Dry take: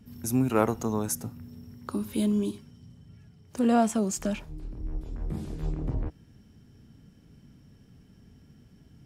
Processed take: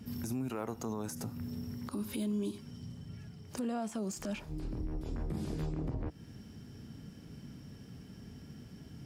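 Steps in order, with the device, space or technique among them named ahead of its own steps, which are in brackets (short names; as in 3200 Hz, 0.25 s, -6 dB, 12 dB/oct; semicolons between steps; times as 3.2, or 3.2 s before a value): broadcast voice chain (HPF 85 Hz 6 dB/oct; de-esser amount 70%; compressor 4:1, threshold -40 dBFS, peak gain reduction 18.5 dB; bell 4900 Hz +4 dB 0.26 oct; limiter -34.5 dBFS, peak gain reduction 10.5 dB); gain +6.5 dB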